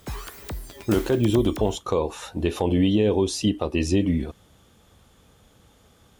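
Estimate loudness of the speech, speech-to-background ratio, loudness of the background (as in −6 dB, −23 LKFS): −23.5 LKFS, 13.5 dB, −37.0 LKFS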